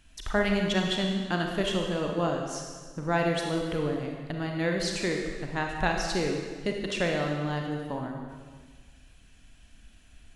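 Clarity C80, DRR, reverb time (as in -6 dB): 4.5 dB, 1.0 dB, 1.6 s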